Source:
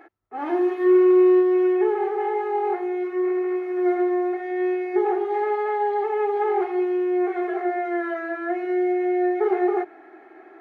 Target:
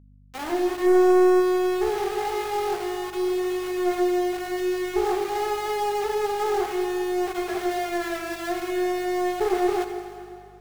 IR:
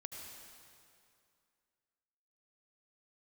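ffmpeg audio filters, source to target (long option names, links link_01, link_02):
-filter_complex "[0:a]aeval=exprs='val(0)*gte(abs(val(0)),0.0376)':channel_layout=same,aeval=exprs='0.316*(cos(1*acos(clip(val(0)/0.316,-1,1)))-cos(1*PI/2))+0.0794*(cos(2*acos(clip(val(0)/0.316,-1,1)))-cos(2*PI/2))':channel_layout=same,aeval=exprs='val(0)+0.00501*(sin(2*PI*50*n/s)+sin(2*PI*2*50*n/s)/2+sin(2*PI*3*50*n/s)/3+sin(2*PI*4*50*n/s)/4+sin(2*PI*5*50*n/s)/5)':channel_layout=same,asplit=2[link_01][link_02];[1:a]atrim=start_sample=2205,lowshelf=frequency=200:gain=-10[link_03];[link_02][link_03]afir=irnorm=-1:irlink=0,volume=4dB[link_04];[link_01][link_04]amix=inputs=2:normalize=0,volume=-7dB"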